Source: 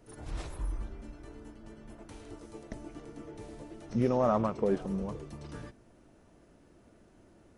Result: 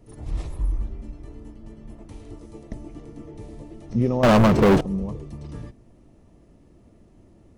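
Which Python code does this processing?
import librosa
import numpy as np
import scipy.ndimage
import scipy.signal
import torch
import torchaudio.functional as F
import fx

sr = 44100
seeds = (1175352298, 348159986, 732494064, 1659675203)

y = fx.low_shelf(x, sr, hz=290.0, db=11.0)
y = fx.notch(y, sr, hz=1500.0, q=5.4)
y = fx.leveller(y, sr, passes=5, at=(4.23, 4.81))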